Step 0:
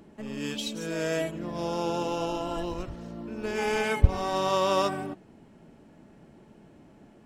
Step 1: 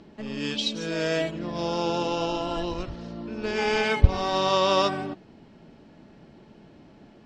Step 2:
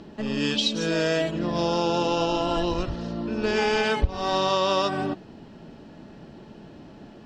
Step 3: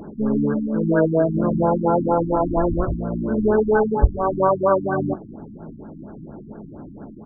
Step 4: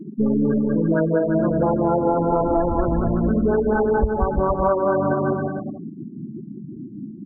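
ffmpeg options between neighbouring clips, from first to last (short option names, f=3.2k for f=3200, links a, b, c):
-af "lowpass=f=4.6k:t=q:w=2,volume=2.5dB"
-af "acompressor=threshold=-26dB:ratio=4,bandreject=f=2.2k:w=10,volume=6dB"
-filter_complex "[0:a]lowpass=f=2.8k:t=q:w=4.9,asplit=2[a][b];[b]adelay=19,volume=-11dB[c];[a][c]amix=inputs=2:normalize=0,afftfilt=real='re*lt(b*sr/1024,310*pow(1700/310,0.5+0.5*sin(2*PI*4.3*pts/sr)))':imag='im*lt(b*sr/1024,310*pow(1700/310,0.5+0.5*sin(2*PI*4.3*pts/sr)))':win_size=1024:overlap=0.75,volume=7dB"
-filter_complex "[0:a]afftfilt=real='re*gte(hypot(re,im),0.0794)':imag='im*gte(hypot(re,im),0.0794)':win_size=1024:overlap=0.75,asplit=2[a][b];[b]aecho=0:1:190|342|463.6|560.9|638.7:0.631|0.398|0.251|0.158|0.1[c];[a][c]amix=inputs=2:normalize=0,acompressor=threshold=-21dB:ratio=6,volume=5dB"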